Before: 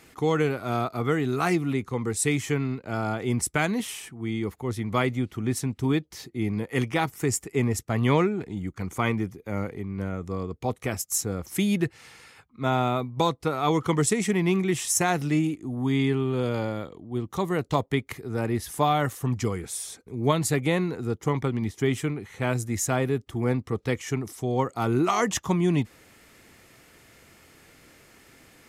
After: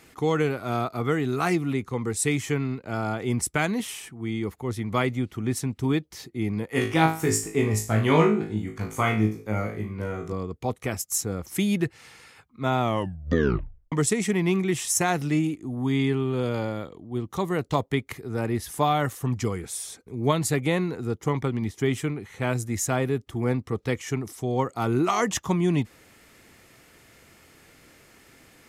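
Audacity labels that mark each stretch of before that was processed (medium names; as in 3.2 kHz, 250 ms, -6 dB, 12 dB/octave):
6.720000	10.330000	flutter echo walls apart 3.2 m, dies away in 0.37 s
12.800000	12.800000	tape stop 1.12 s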